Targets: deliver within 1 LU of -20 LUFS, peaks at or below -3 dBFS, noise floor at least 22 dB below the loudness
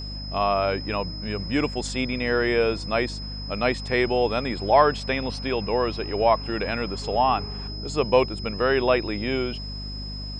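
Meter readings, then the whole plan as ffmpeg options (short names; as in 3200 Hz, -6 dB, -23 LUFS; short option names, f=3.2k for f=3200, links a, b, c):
hum 50 Hz; harmonics up to 250 Hz; hum level -32 dBFS; steady tone 5100 Hz; tone level -36 dBFS; loudness -24.5 LUFS; peak -5.0 dBFS; loudness target -20.0 LUFS
-> -af "bandreject=f=50:t=h:w=6,bandreject=f=100:t=h:w=6,bandreject=f=150:t=h:w=6,bandreject=f=200:t=h:w=6,bandreject=f=250:t=h:w=6"
-af "bandreject=f=5.1k:w=30"
-af "volume=4.5dB,alimiter=limit=-3dB:level=0:latency=1"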